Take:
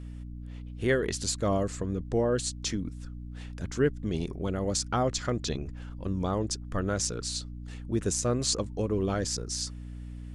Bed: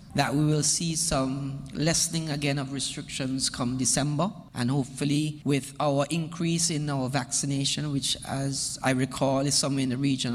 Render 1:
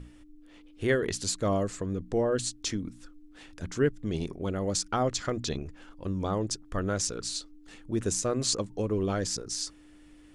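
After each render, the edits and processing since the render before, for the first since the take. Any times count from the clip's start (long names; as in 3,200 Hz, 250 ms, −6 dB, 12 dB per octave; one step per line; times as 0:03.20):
mains-hum notches 60/120/180/240 Hz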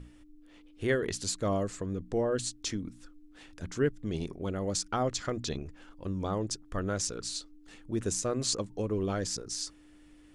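level −2.5 dB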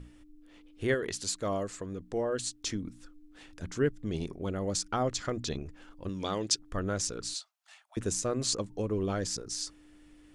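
0:00.94–0:02.64: low-shelf EQ 290 Hz −7 dB
0:06.09–0:06.59: meter weighting curve D
0:07.34–0:07.97: Chebyshev high-pass filter 630 Hz, order 8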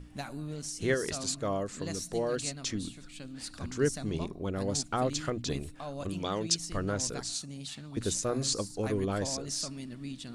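mix in bed −15 dB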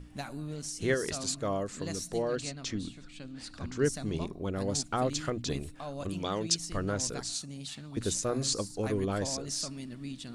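0:02.22–0:03.84: high-frequency loss of the air 60 metres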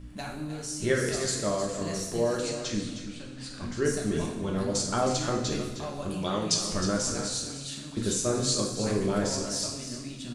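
on a send: single-tap delay 312 ms −10.5 dB
on the sum: coupled-rooms reverb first 0.82 s, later 2.7 s, DRR −1 dB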